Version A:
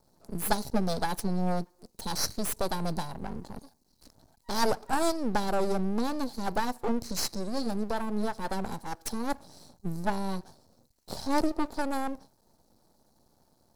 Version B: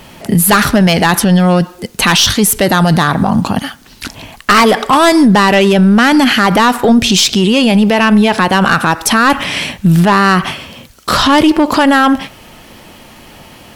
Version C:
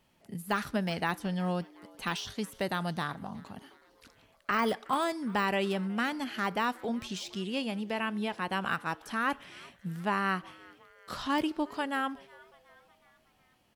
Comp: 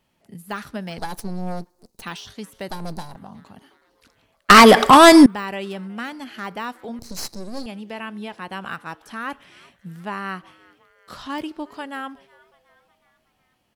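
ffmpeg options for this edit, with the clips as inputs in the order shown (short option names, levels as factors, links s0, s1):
-filter_complex "[0:a]asplit=3[s0][s1][s2];[2:a]asplit=5[s3][s4][s5][s6][s7];[s3]atrim=end=0.982[s8];[s0]atrim=start=0.978:end=2.022[s9];[s4]atrim=start=2.018:end=2.702[s10];[s1]atrim=start=2.698:end=3.162[s11];[s5]atrim=start=3.158:end=4.502[s12];[1:a]atrim=start=4.498:end=5.262[s13];[s6]atrim=start=5.258:end=6.992[s14];[s2]atrim=start=6.988:end=7.662[s15];[s7]atrim=start=7.658[s16];[s8][s9]acrossfade=d=0.004:c1=hsin:c2=hsin[s17];[s17][s10]acrossfade=d=0.004:c1=hsin:c2=hsin[s18];[s18][s11]acrossfade=d=0.004:c1=hsin:c2=hsin[s19];[s19][s12]acrossfade=d=0.004:c1=hsin:c2=hsin[s20];[s20][s13]acrossfade=d=0.004:c1=hsin:c2=hsin[s21];[s21][s14]acrossfade=d=0.004:c1=hsin:c2=hsin[s22];[s22][s15]acrossfade=d=0.004:c1=hsin:c2=hsin[s23];[s23][s16]acrossfade=d=0.004:c1=hsin:c2=hsin"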